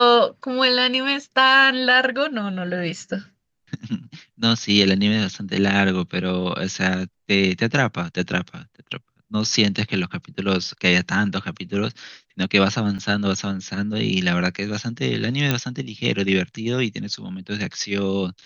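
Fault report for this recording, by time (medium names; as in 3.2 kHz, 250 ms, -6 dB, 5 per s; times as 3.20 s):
12.98–12.99 s: dropout 6.8 ms
15.51 s: pop -5 dBFS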